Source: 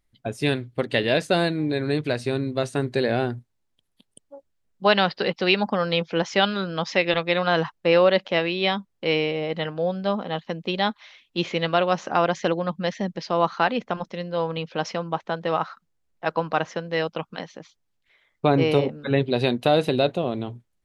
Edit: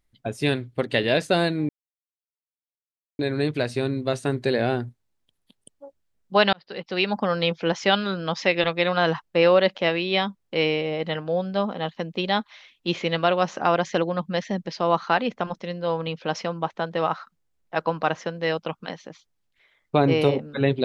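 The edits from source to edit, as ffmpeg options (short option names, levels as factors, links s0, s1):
-filter_complex "[0:a]asplit=3[s0][s1][s2];[s0]atrim=end=1.69,asetpts=PTS-STARTPTS,afade=t=out:st=1.686:d=0.004:c=hsin,apad=pad_dur=1.5[s3];[s1]atrim=start=1.69:end=5.03,asetpts=PTS-STARTPTS,afade=t=in:d=0.004:c=hsin,afade=t=out:st=3.336:d=0.004:c=hsin[s4];[s2]atrim=start=5.03,asetpts=PTS-STARTPTS,afade=t=in:d=0.73[s5];[s3][s4][s5]concat=n=3:v=0:a=1"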